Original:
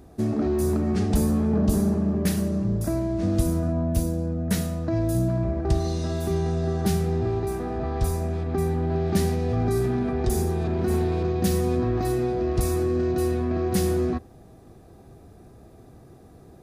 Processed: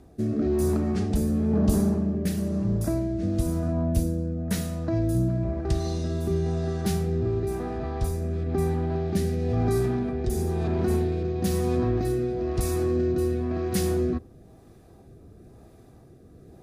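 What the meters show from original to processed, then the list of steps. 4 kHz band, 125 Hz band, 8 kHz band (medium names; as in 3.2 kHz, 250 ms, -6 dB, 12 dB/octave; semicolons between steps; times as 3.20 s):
-2.5 dB, -1.5 dB, -2.5 dB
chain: rotary cabinet horn 1 Hz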